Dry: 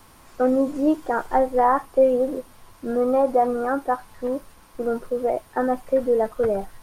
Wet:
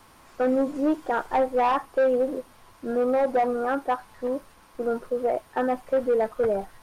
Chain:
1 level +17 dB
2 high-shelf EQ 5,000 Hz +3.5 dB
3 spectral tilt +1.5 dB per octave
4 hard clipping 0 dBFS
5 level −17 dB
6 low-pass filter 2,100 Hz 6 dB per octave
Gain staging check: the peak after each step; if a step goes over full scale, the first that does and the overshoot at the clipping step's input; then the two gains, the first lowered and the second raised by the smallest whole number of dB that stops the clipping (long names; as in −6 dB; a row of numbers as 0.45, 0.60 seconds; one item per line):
+10.0, +10.0, +8.5, 0.0, −17.0, −17.0 dBFS
step 1, 8.5 dB
step 1 +8 dB, step 5 −8 dB